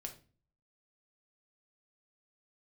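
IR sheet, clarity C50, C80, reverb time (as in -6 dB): 11.5 dB, 16.5 dB, no single decay rate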